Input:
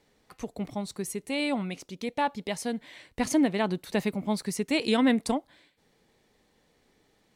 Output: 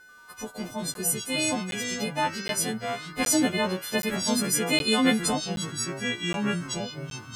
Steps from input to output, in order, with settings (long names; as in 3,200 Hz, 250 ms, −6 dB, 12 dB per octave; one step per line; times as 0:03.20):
every partial snapped to a pitch grid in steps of 3 semitones
steady tone 1,500 Hz −50 dBFS
delay with pitch and tempo change per echo 89 ms, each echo −4 semitones, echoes 3, each echo −6 dB
regular buffer underruns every 0.77 s, samples 512, zero, from 0:00.94